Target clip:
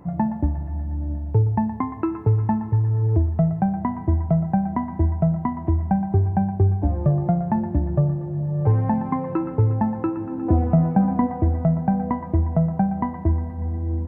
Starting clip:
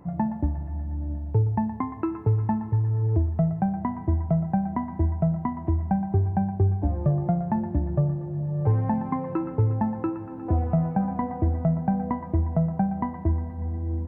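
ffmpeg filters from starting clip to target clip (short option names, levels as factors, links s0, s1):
-filter_complex "[0:a]asettb=1/sr,asplit=3[s0][s1][s2];[s0]atrim=end=10.174[s3];[s1]atrim=start=10.17:end=11.27,asetpts=PTS-STARTPTS,afade=t=in:d=0.004:c=qsin,afade=t=out:st=1.096:d=0.004:c=qsin,equalizer=f=270:w=1.4:g=6.5[s4];[s2]atrim=start=11.266[s5];[s3][s4]acrossfade=d=0.004:c1=hsin:c2=qsin[s6];[s6][s5]acrossfade=d=0.004:c1=qsin:c2=hsin,volume=1.5"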